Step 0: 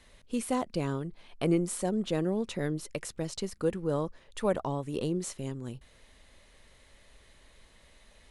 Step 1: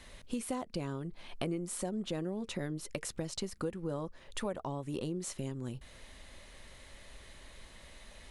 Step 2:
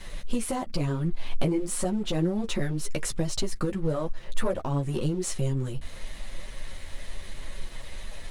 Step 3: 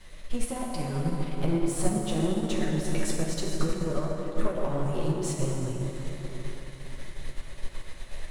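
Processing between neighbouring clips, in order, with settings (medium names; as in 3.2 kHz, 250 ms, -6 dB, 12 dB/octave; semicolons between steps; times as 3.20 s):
band-stop 450 Hz, Q 14; compression 4:1, threshold -41 dBFS, peak gain reduction 16.5 dB; trim +5.5 dB
bass shelf 65 Hz +11 dB; waveshaping leveller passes 2; chorus voices 4, 0.84 Hz, delay 10 ms, depth 4.8 ms; trim +4 dB
saturation -20.5 dBFS, distortion -15 dB; plate-style reverb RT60 4.9 s, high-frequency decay 0.5×, DRR -3 dB; upward expansion 1.5:1, over -34 dBFS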